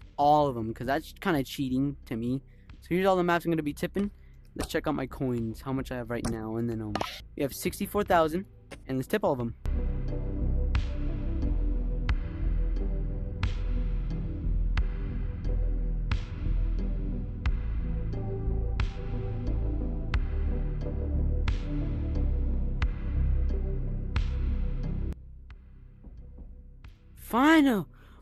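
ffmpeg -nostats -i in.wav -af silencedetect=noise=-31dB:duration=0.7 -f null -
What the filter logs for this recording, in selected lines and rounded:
silence_start: 25.13
silence_end: 27.31 | silence_duration: 2.18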